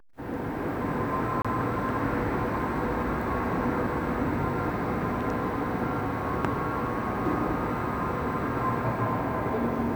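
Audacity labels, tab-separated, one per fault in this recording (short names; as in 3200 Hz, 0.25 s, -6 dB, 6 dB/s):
1.420000	1.450000	gap 26 ms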